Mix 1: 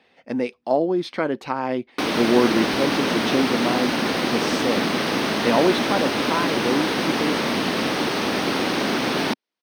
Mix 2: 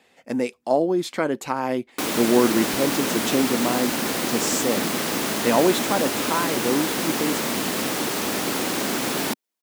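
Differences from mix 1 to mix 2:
background -3.5 dB; master: remove Savitzky-Golay filter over 15 samples

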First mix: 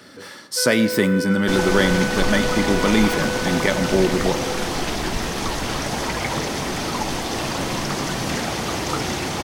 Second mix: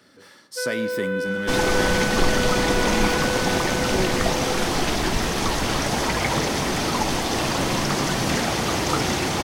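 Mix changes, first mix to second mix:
speech -10.5 dB; second sound: send +8.5 dB

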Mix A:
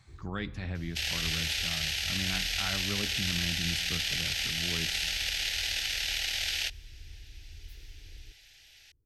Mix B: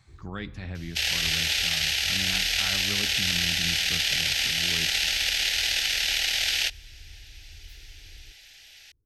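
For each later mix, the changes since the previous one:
second sound +6.5 dB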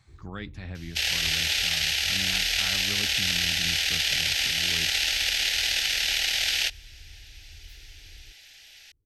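reverb: off

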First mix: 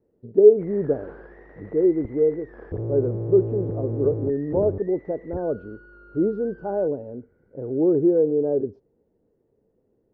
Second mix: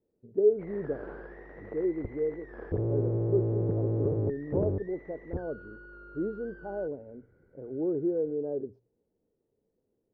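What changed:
speech -10.5 dB; master: add hum notches 60/120 Hz

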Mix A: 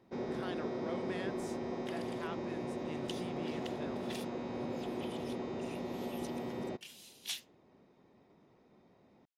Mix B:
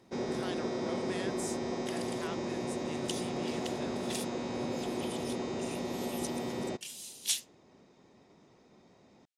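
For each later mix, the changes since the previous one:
first sound +3.5 dB; master: add peaking EQ 8.3 kHz +15 dB 1.6 oct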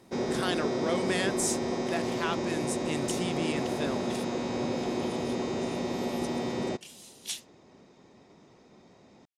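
speech +11.5 dB; first sound +4.5 dB; second sound: add tilt EQ -2 dB/octave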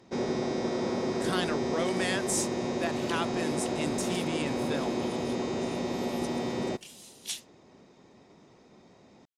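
speech: entry +0.90 s

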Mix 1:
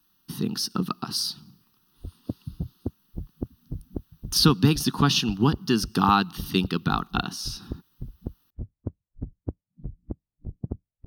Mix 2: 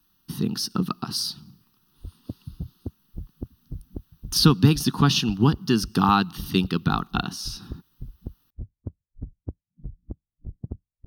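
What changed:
background -6.0 dB; master: add bass shelf 130 Hz +7.5 dB

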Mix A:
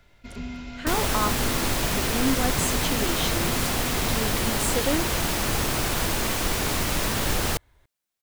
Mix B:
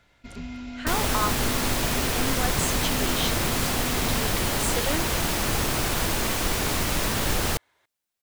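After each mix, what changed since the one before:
speech: add frequency weighting A; reverb: off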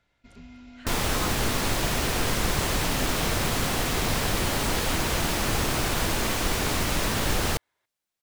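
speech -11.0 dB; first sound -10.0 dB; master: add treble shelf 9.6 kHz -4.5 dB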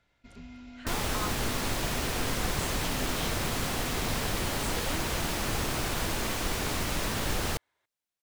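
second sound -5.0 dB

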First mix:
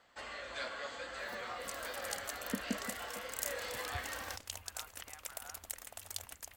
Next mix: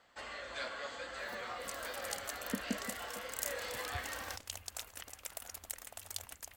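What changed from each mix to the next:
speech -9.5 dB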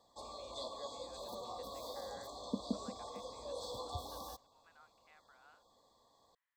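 first sound: add brick-wall FIR band-stop 1.2–3.3 kHz; second sound: muted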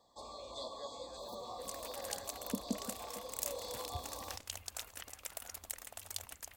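second sound: unmuted

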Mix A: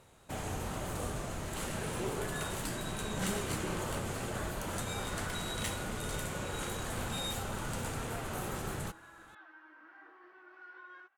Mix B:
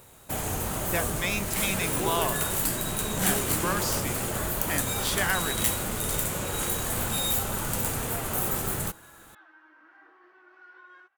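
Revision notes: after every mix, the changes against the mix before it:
speech: unmuted; first sound +6.0 dB; master: remove distance through air 57 m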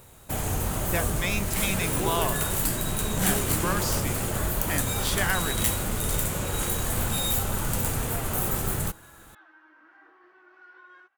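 master: add bass shelf 120 Hz +8 dB

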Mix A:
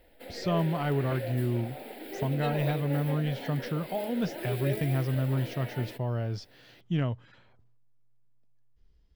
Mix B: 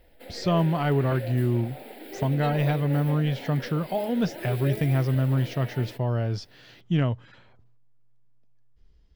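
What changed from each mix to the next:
speech +5.0 dB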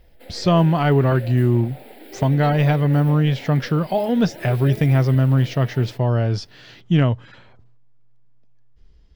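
speech +7.0 dB

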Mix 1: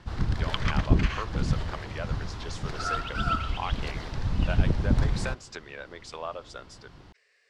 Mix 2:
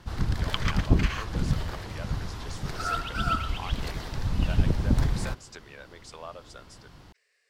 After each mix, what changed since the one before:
speech -6.0 dB; master: remove distance through air 64 m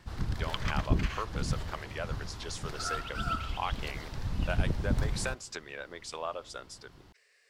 speech +5.0 dB; background -6.0 dB

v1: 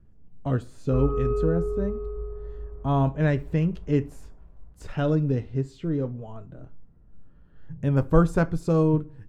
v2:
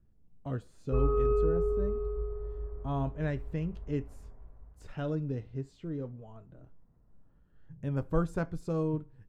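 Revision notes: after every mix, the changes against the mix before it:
speech -7.5 dB; reverb: off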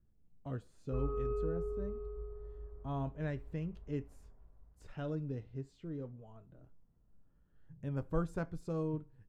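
speech -5.5 dB; background -9.5 dB

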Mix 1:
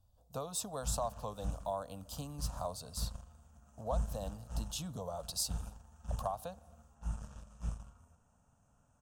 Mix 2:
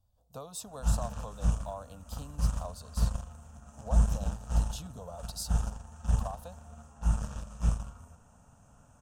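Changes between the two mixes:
speech -3.0 dB; background +11.5 dB

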